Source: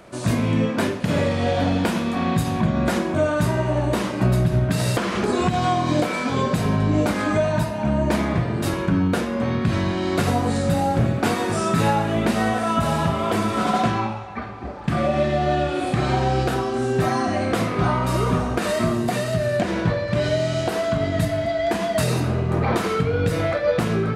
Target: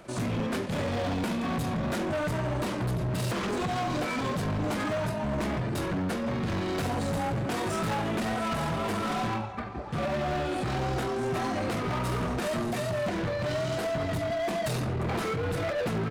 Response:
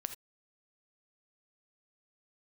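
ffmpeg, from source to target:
-af "asoftclip=type=hard:threshold=-23.5dB,atempo=1.5,volume=-3.5dB"

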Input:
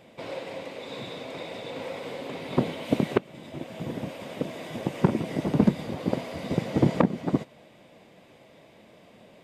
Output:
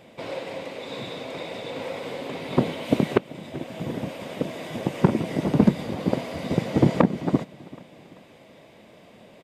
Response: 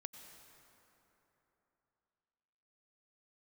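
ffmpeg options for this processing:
-af "aecho=1:1:387|774|1161:0.0891|0.0374|0.0157,volume=3dB"

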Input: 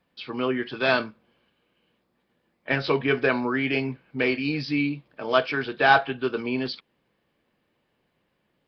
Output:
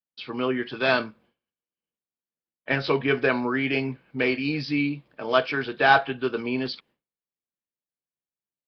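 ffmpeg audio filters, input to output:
-af "agate=range=-33dB:threshold=-52dB:ratio=3:detection=peak"

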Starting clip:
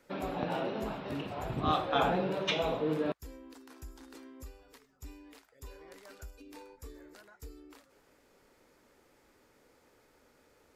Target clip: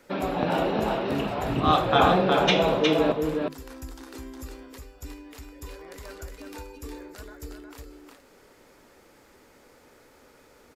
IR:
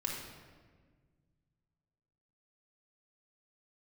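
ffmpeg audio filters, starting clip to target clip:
-filter_complex "[0:a]bandreject=f=50:t=h:w=6,bandreject=f=100:t=h:w=6,bandreject=f=150:t=h:w=6,asplit=2[a][b];[b]aecho=0:1:361:0.631[c];[a][c]amix=inputs=2:normalize=0,volume=8.5dB"

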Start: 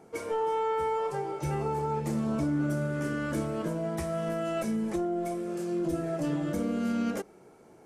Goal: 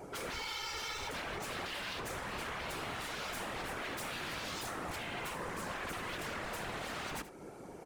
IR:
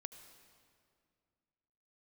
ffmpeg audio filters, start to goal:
-filter_complex "[0:a]asplit=2[a][b];[b]acompressor=threshold=-44dB:ratio=6,volume=0dB[c];[a][c]amix=inputs=2:normalize=0,aeval=exprs='0.0158*(abs(mod(val(0)/0.0158+3,4)-2)-1)':c=same,afftfilt=real='hypot(re,im)*cos(2*PI*random(0))':imag='hypot(re,im)*sin(2*PI*random(1))':win_size=512:overlap=0.75,aecho=1:1:77:0.188,volume=6dB"

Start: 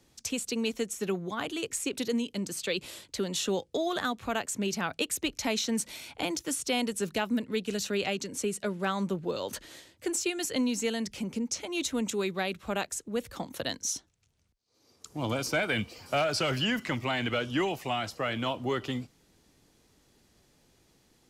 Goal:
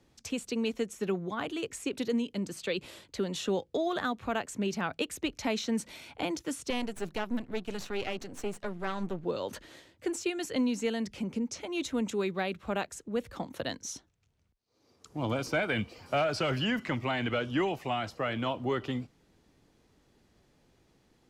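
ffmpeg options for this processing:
-filter_complex "[0:a]asettb=1/sr,asplit=3[a][b][c];[a]atrim=end=6.704[d];[b]atrim=start=6.7:end=9.25,asetpts=PTS-STARTPTS,afade=t=in:d=0.004:c=qsin,afade=t=out:st=2.546:d=0.004:c=qsin,aeval=exprs='if(lt(val(0),0),0.251*val(0),val(0))':c=same[e];[c]atrim=start=9.246[f];[d][e]acrossfade=d=0.004:c1=hsin:c2=qsin[g];[g][f]acrossfade=d=0.004:c1=qsin:c2=hsin,highshelf=f=4.2k:g=-11.5"

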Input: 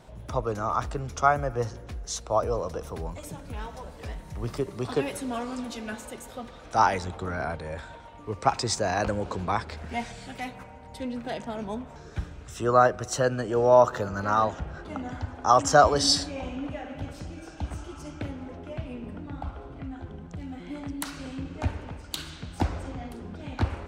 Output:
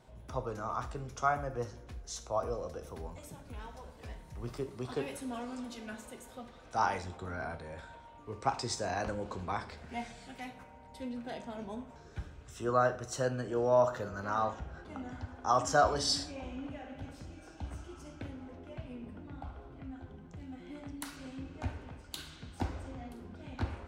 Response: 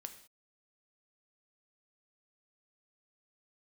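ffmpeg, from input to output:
-filter_complex "[0:a]asettb=1/sr,asplit=3[a][b][c];[a]atrim=end=2.404[d];[b]atrim=start=2.4:end=2.9,asetpts=PTS-STARTPTS,afade=t=in:d=0.004:c=qsin,afade=t=out:st=0.496:d=0.004:c=qsin,bandreject=f=990:w=5.1[e];[c]atrim=start=2.896[f];[d][e]acrossfade=d=0.004:c1=hsin:c2=qsin[g];[g][f]acrossfade=d=0.004:c1=qsin:c2=hsin[h];[1:a]atrim=start_sample=2205,asetrate=70560,aresample=44100[i];[h][i]afir=irnorm=-1:irlink=0"

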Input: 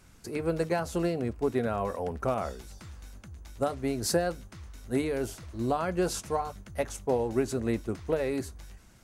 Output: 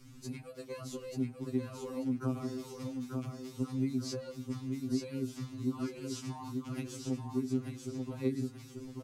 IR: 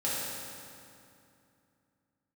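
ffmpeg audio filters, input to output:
-filter_complex "[0:a]acrossover=split=220|5700[a][b][c];[a]acompressor=threshold=-41dB:ratio=4[d];[b]acompressor=threshold=-31dB:ratio=4[e];[c]acompressor=threshold=-51dB:ratio=4[f];[d][e][f]amix=inputs=3:normalize=0,equalizer=f=100:t=o:w=0.67:g=8,equalizer=f=250:t=o:w=0.67:g=10,equalizer=f=630:t=o:w=0.67:g=-12,equalizer=f=1.6k:t=o:w=0.67:g=-8,equalizer=f=10k:t=o:w=0.67:g=-4,acompressor=threshold=-35dB:ratio=6,asplit=2[g][h];[h]aecho=0:1:888|1776|2664|3552:0.596|0.191|0.061|0.0195[i];[g][i]amix=inputs=2:normalize=0,afftfilt=real='re*2.45*eq(mod(b,6),0)':imag='im*2.45*eq(mod(b,6),0)':win_size=2048:overlap=0.75,volume=3dB"

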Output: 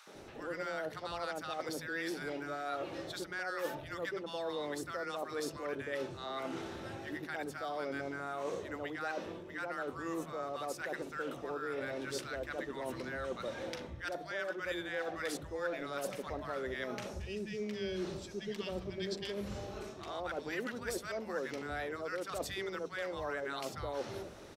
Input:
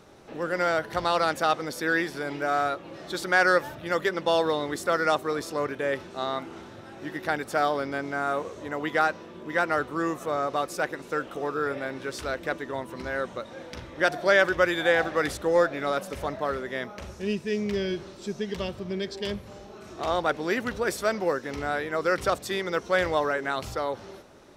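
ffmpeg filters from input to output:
-filter_complex "[0:a]areverse,acompressor=threshold=-36dB:ratio=10,areverse,acrossover=split=190|990[a][b][c];[b]adelay=70[d];[a]adelay=150[e];[e][d][c]amix=inputs=3:normalize=0,volume=2dB"

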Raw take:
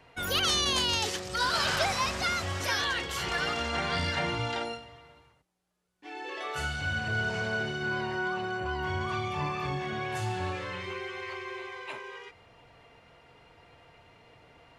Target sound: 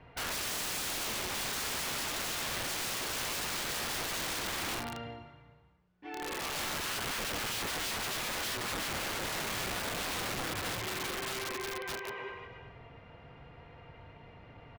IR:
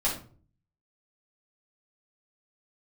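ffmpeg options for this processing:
-filter_complex "[0:a]lowpass=7.2k,bass=f=250:g=7,treble=f=4k:g=-15,acompressor=threshold=-31dB:ratio=3,asplit=2[a][b];[b]aecho=0:1:160|288|390.4|472.3|537.9:0.631|0.398|0.251|0.158|0.1[c];[a][c]amix=inputs=2:normalize=0,aeval=exprs='(mod(35.5*val(0)+1,2)-1)/35.5':c=same"

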